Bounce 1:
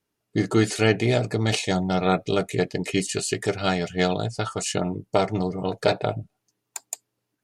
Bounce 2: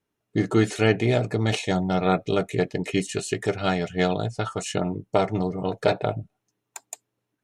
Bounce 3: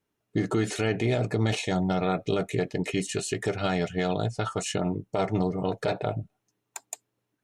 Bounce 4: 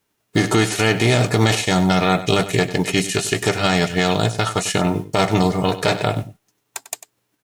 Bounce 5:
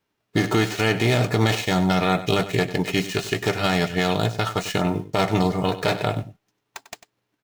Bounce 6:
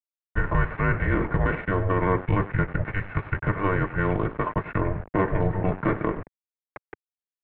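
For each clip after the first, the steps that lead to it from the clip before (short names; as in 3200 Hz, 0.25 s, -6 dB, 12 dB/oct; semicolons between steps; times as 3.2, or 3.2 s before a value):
high shelf 4500 Hz -7 dB; notch 4700 Hz, Q 8.1
limiter -16 dBFS, peak gain reduction 10.5 dB
spectral whitening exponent 0.6; echo 97 ms -14 dB; gain +9 dB
median filter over 5 samples; gain -3.5 dB
sample gate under -30.5 dBFS; mistuned SSB -290 Hz 210–2200 Hz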